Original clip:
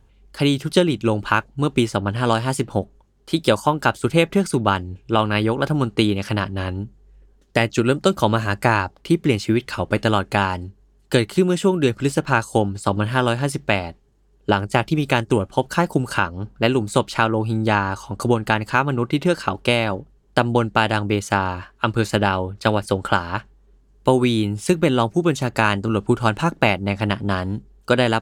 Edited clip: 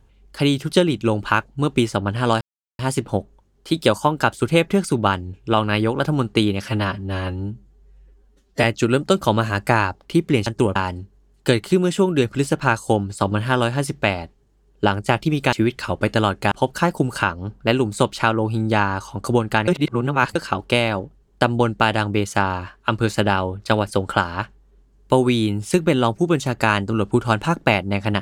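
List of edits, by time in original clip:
2.41 s: insert silence 0.38 s
6.26–7.59 s: stretch 1.5×
9.42–10.41 s: swap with 15.18–15.47 s
18.63–19.31 s: reverse

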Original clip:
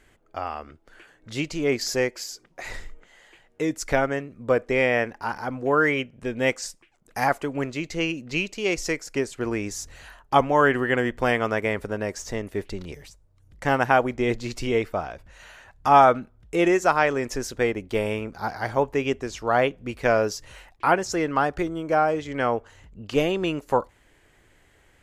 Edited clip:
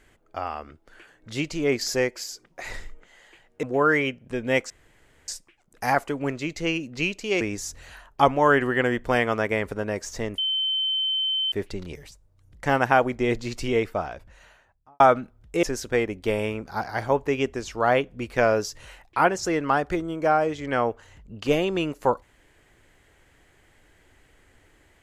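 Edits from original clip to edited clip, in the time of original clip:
3.63–5.55 s: delete
6.62 s: insert room tone 0.58 s
8.75–9.54 s: delete
12.51 s: add tone 3.08 kHz -22 dBFS 1.14 s
15.09–15.99 s: studio fade out
16.62–17.30 s: delete

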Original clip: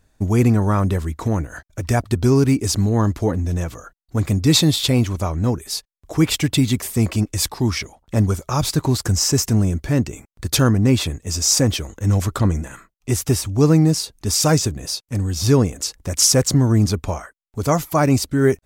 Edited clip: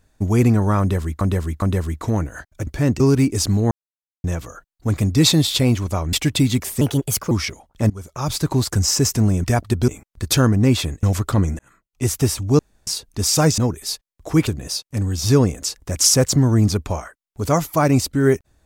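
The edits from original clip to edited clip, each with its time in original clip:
0.80–1.21 s: loop, 3 plays
1.85–2.29 s: swap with 9.77–10.10 s
3.00–3.53 s: mute
5.42–6.31 s: move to 14.65 s
6.99–7.64 s: speed 130%
8.23–9.05 s: fade in equal-power, from -23 dB
11.25–12.10 s: delete
12.66–13.14 s: fade in
13.66–13.94 s: room tone

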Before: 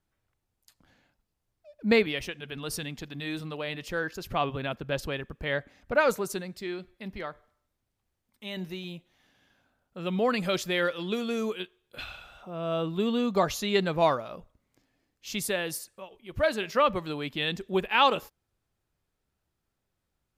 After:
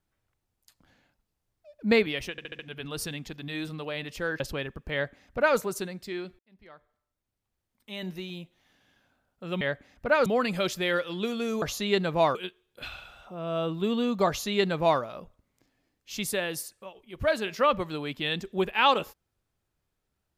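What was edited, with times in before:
2.31 s: stutter 0.07 s, 5 plays
4.12–4.94 s: delete
5.47–6.12 s: copy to 10.15 s
6.93–8.54 s: fade in
13.44–14.17 s: copy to 11.51 s

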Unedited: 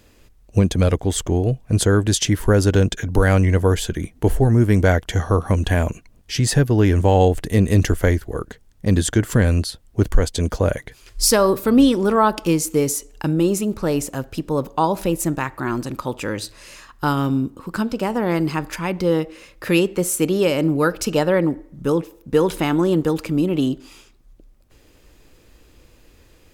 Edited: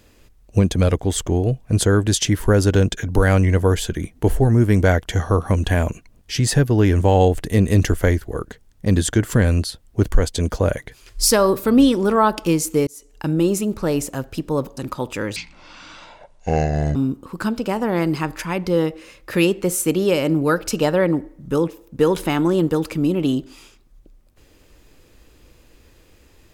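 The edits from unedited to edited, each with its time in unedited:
12.87–13.34 s: fade in
14.77–15.84 s: delete
16.43–17.29 s: speed 54%

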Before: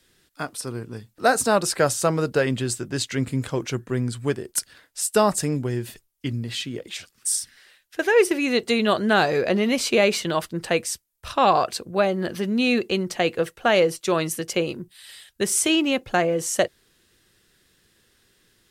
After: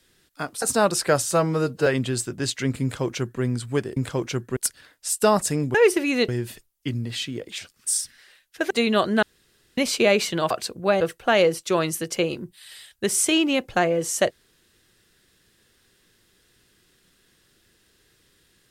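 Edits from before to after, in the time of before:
0.62–1.33 s: delete
2.02–2.39 s: stretch 1.5×
3.35–3.95 s: copy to 4.49 s
8.09–8.63 s: move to 5.67 s
9.15–9.70 s: room tone
10.43–11.61 s: delete
12.11–13.38 s: delete

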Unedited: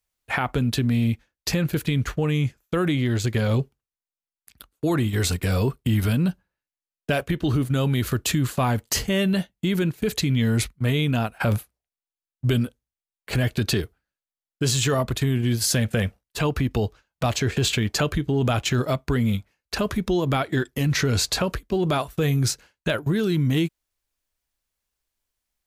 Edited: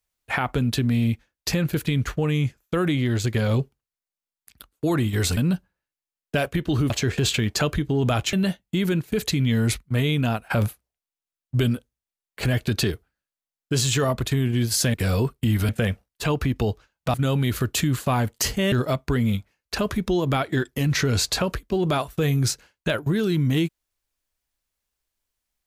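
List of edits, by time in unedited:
5.37–6.12 s: move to 15.84 s
7.65–9.23 s: swap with 17.29–18.72 s

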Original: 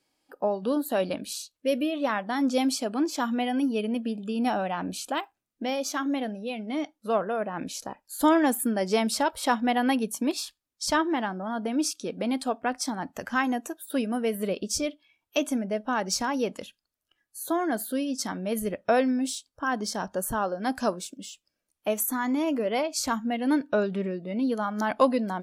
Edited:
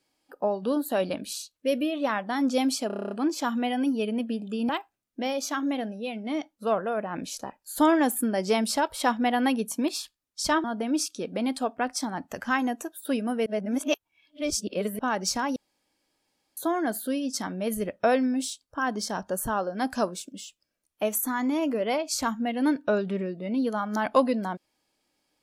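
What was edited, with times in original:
2.87 s: stutter 0.03 s, 9 plays
4.45–5.12 s: delete
11.07–11.49 s: delete
14.31–15.84 s: reverse
16.41–17.42 s: room tone

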